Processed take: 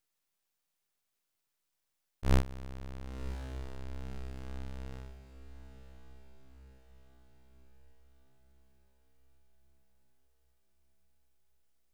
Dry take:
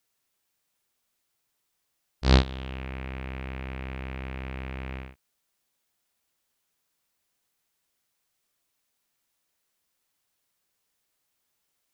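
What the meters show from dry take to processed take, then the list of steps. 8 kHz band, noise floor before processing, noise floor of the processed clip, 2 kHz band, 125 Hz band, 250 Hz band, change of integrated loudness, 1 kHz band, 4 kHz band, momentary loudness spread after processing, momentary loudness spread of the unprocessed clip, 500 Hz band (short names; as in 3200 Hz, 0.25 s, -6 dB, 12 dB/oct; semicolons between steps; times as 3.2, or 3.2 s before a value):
n/a, -78 dBFS, -83 dBFS, -12.0 dB, -7.5 dB, -9.0 dB, -8.5 dB, -9.5 dB, -16.0 dB, 24 LU, 15 LU, -8.5 dB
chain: half-wave rectifier; diffused feedback echo 1.041 s, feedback 53%, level -12.5 dB; gain -3 dB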